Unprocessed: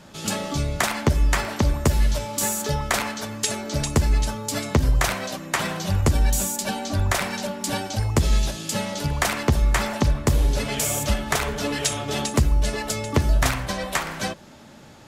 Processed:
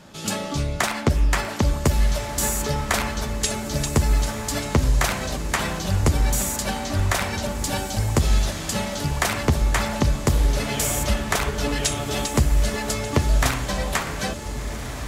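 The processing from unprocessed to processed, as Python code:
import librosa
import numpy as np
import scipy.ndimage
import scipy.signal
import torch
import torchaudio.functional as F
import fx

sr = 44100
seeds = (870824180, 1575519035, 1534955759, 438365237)

y = fx.echo_diffused(x, sr, ms=1502, feedback_pct=45, wet_db=-9.5)
y = fx.doppler_dist(y, sr, depth_ms=0.33, at=(0.44, 1.37))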